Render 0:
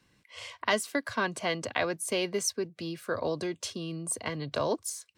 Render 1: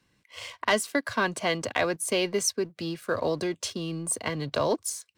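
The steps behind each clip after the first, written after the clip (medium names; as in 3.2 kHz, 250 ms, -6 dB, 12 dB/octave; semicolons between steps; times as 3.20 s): waveshaping leveller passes 1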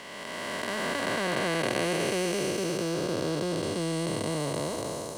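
spectral blur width 1040 ms; trim +6.5 dB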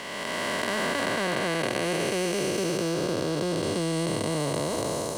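compression, threshold -30 dBFS, peak gain reduction 7 dB; trim +6.5 dB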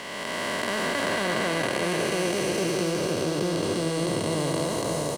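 delay 619 ms -5 dB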